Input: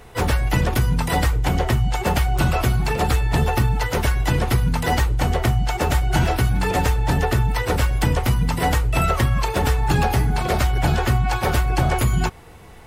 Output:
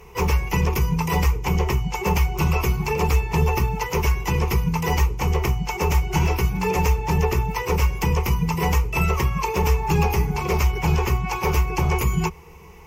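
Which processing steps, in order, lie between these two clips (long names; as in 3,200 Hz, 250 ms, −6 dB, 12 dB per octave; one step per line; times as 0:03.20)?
EQ curve with evenly spaced ripples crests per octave 0.78, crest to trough 14 dB
level −4 dB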